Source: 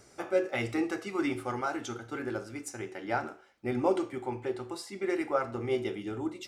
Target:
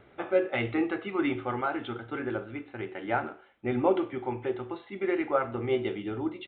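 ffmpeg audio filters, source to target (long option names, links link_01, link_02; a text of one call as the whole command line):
ffmpeg -i in.wav -af "aresample=8000,aresample=44100,volume=2.5dB" out.wav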